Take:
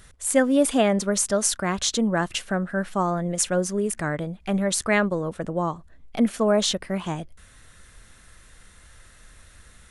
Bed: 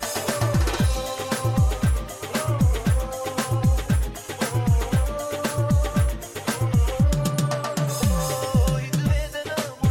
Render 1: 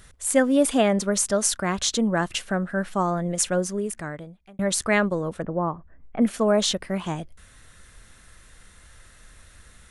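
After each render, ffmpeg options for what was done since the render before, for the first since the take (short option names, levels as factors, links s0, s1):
-filter_complex "[0:a]asettb=1/sr,asplit=3[s0][s1][s2];[s0]atrim=end=5.424[s3];[s1]atrim=start=5.42:end=6.22,asetpts=PTS-STARTPTS,afade=t=in:d=0.004:c=qsin,afade=t=out:st=0.796:d=0.004:c=qsin,lowpass=f=2000:w=0.5412,lowpass=f=2000:w=1.3066[s4];[s2]atrim=start=6.216[s5];[s3][s4]acrossfade=d=0.004:c1=hsin:c2=qsin[s6];[s6][s5]acrossfade=d=0.004:c1=qsin:c2=hsin,asplit=2[s7][s8];[s7]atrim=end=4.59,asetpts=PTS-STARTPTS,afade=t=out:st=3.51:d=1.08[s9];[s8]atrim=start=4.59,asetpts=PTS-STARTPTS,afade=t=in:d=0.004:c=hsin[s10];[s9][s10]concat=n=2:v=0:a=1"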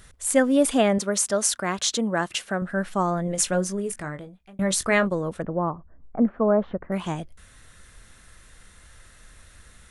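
-filter_complex "[0:a]asettb=1/sr,asplit=3[s0][s1][s2];[s0]atrim=end=0.984[s3];[s1]atrim=start=0.98:end=2.62,asetpts=PTS-STARTPTS,afade=t=in:d=0.004:c=qsin,afade=t=out:st=1.636:d=0.004:c=qsin,highpass=f=230:p=1[s4];[s2]atrim=start=2.616[s5];[s3][s4]acrossfade=d=0.004:c1=hsin:c2=qsin[s6];[s6][s5]acrossfade=d=0.004:c1=qsin:c2=hsin,asettb=1/sr,asplit=3[s7][s8][s9];[s7]atrim=end=3.254[s10];[s8]atrim=start=3.25:end=5.07,asetpts=PTS-STARTPTS,afade=t=in:d=0.004:c=qsin,afade=t=out:st=1.816:d=0.004:c=qsin,asplit=2[s11][s12];[s12]adelay=21,volume=0.355[s13];[s11][s13]amix=inputs=2:normalize=0,atrim=end_sample=80262[s14];[s9]atrim=start=5.066[s15];[s10][s14]acrossfade=d=0.004:c1=hsin:c2=qsin[s16];[s16][s15]acrossfade=d=0.004:c1=qsin:c2=hsin,asettb=1/sr,asplit=3[s17][s18][s19];[s17]atrim=end=5.704[s20];[s18]atrim=start=5.7:end=6.92,asetpts=PTS-STARTPTS,afade=t=in:d=0.004:c=qsin,afade=t=out:st=1.216:d=0.004:c=qsin,lowpass=f=1400:w=0.5412,lowpass=f=1400:w=1.3066[s21];[s19]atrim=start=6.916[s22];[s20][s21]acrossfade=d=0.004:c1=hsin:c2=qsin[s23];[s23][s22]acrossfade=d=0.004:c1=qsin:c2=hsin"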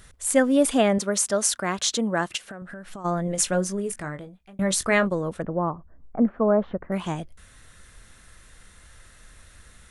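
-filter_complex "[0:a]asplit=3[s0][s1][s2];[s0]afade=t=out:st=2.36:d=0.02[s3];[s1]acompressor=threshold=0.02:ratio=16:attack=3.2:release=140:knee=1:detection=peak,afade=t=in:st=2.36:d=0.02,afade=t=out:st=3.04:d=0.02[s4];[s2]afade=t=in:st=3.04:d=0.02[s5];[s3][s4][s5]amix=inputs=3:normalize=0"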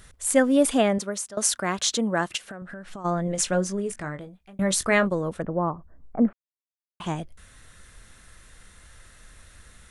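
-filter_complex "[0:a]asettb=1/sr,asplit=3[s0][s1][s2];[s0]atrim=end=2.574[s3];[s1]atrim=start=2.57:end=4.21,asetpts=PTS-STARTPTS,afade=t=in:d=0.004:c=qsin,afade=t=out:st=1.636:d=0.004:c=qsin,lowpass=8500[s4];[s2]atrim=start=4.206[s5];[s3][s4]acrossfade=d=0.004:c1=hsin:c2=qsin[s6];[s6][s5]acrossfade=d=0.004:c1=qsin:c2=hsin,asplit=4[s7][s8][s9][s10];[s7]atrim=end=1.37,asetpts=PTS-STARTPTS,afade=t=out:st=0.58:d=0.79:c=qsin:silence=0.0891251[s11];[s8]atrim=start=1.37:end=6.33,asetpts=PTS-STARTPTS,afade=t=in:d=0.004:c=hsin:silence=0.0891251,afade=t=out:st=4.956:d=0.004:c=hsin[s12];[s9]atrim=start=6.33:end=7,asetpts=PTS-STARTPTS,volume=0[s13];[s10]atrim=start=7,asetpts=PTS-STARTPTS,afade=t=in:d=0.004:c=hsin[s14];[s11][s12][s13][s14]concat=n=4:v=0:a=1"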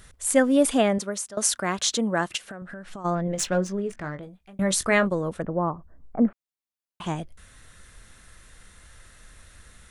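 -filter_complex "[0:a]asettb=1/sr,asplit=3[s0][s1][s2];[s0]atrim=end=3.154[s3];[s1]atrim=start=3.15:end=4.23,asetpts=PTS-STARTPTS,afade=t=in:d=0.004:c=qsin,afade=t=out:st=1.076:d=0.004:c=qsin,adynamicsmooth=sensitivity=4.5:basefreq=3600[s4];[s2]atrim=start=4.226[s5];[s3][s4]acrossfade=d=0.004:c1=hsin:c2=qsin[s6];[s6][s5]acrossfade=d=0.004:c1=qsin:c2=hsin"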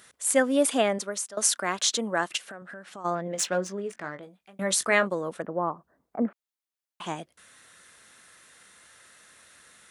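-af "highpass=200,lowshelf=f=380:g=-6.5"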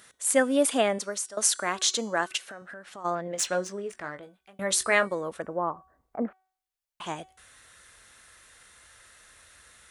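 -af "bandreject=f=376.7:t=h:w=4,bandreject=f=753.4:t=h:w=4,bandreject=f=1130.1:t=h:w=4,bandreject=f=1506.8:t=h:w=4,bandreject=f=1883.5:t=h:w=4,bandreject=f=2260.2:t=h:w=4,bandreject=f=2636.9:t=h:w=4,bandreject=f=3013.6:t=h:w=4,bandreject=f=3390.3:t=h:w=4,bandreject=f=3767:t=h:w=4,bandreject=f=4143.7:t=h:w=4,bandreject=f=4520.4:t=h:w=4,bandreject=f=4897.1:t=h:w=4,bandreject=f=5273.8:t=h:w=4,bandreject=f=5650.5:t=h:w=4,bandreject=f=6027.2:t=h:w=4,bandreject=f=6403.9:t=h:w=4,bandreject=f=6780.6:t=h:w=4,bandreject=f=7157.3:t=h:w=4,bandreject=f=7534:t=h:w=4,bandreject=f=7910.7:t=h:w=4,bandreject=f=8287.4:t=h:w=4,bandreject=f=8664.1:t=h:w=4,bandreject=f=9040.8:t=h:w=4,bandreject=f=9417.5:t=h:w=4,bandreject=f=9794.2:t=h:w=4,asubboost=boost=9:cutoff=61"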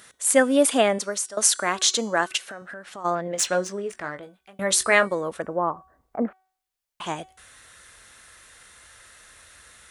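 -af "volume=1.68"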